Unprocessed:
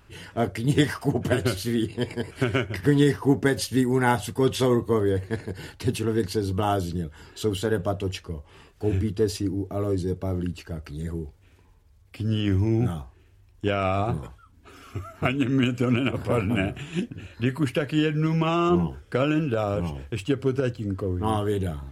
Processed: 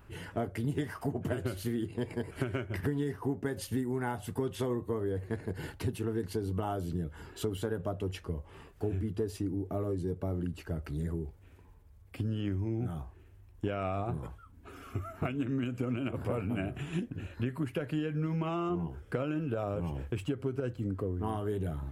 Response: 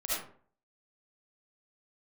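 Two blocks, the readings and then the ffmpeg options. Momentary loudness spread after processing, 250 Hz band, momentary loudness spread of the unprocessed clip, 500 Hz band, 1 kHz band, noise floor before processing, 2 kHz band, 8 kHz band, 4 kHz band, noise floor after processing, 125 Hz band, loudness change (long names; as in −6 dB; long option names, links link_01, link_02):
6 LU, −9.5 dB, 11 LU, −10.0 dB, −11.0 dB, −56 dBFS, −12.5 dB, −12.0 dB, −14.5 dB, −56 dBFS, −8.5 dB, −10.0 dB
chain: -af "equalizer=frequency=4800:width=0.6:gain=-9,acompressor=threshold=-30dB:ratio=6"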